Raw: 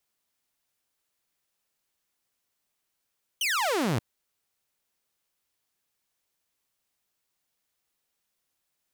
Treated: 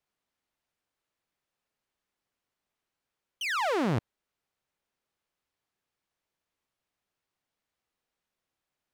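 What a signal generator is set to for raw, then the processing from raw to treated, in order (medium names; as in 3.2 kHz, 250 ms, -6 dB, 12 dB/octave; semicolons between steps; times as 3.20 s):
laser zap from 3.2 kHz, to 100 Hz, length 0.58 s saw, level -21.5 dB
low-pass 2.1 kHz 6 dB/octave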